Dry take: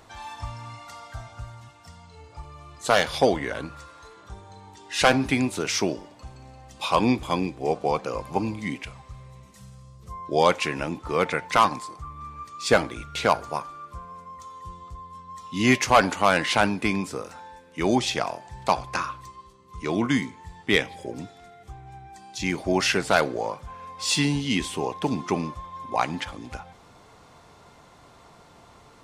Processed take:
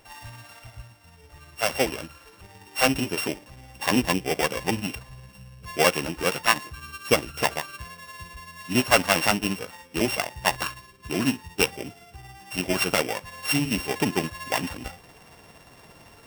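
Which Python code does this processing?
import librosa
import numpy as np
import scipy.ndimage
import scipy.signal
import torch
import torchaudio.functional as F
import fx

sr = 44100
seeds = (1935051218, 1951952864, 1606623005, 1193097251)

y = np.r_[np.sort(x[:len(x) // 16 * 16].reshape(-1, 16), axis=1).ravel(), x[len(x) // 16 * 16:]]
y = fx.stretch_grains(y, sr, factor=0.56, grain_ms=114.0)
y = fx.rider(y, sr, range_db=3, speed_s=2.0)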